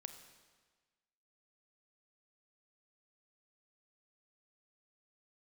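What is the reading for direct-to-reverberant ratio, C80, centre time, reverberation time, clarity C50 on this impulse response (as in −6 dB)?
7.5 dB, 10.5 dB, 19 ms, 1.4 s, 9.0 dB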